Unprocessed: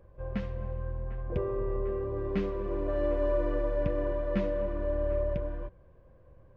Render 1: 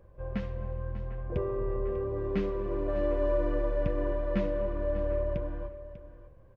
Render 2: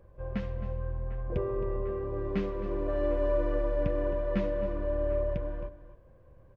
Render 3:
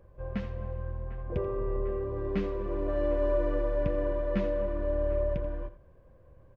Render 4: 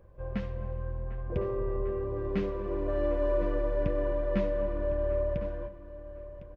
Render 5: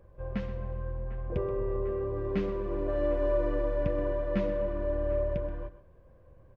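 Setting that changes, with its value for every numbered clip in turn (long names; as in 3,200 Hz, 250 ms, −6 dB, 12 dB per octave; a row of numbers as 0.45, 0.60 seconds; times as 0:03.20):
single-tap delay, delay time: 595, 267, 85, 1,056, 128 milliseconds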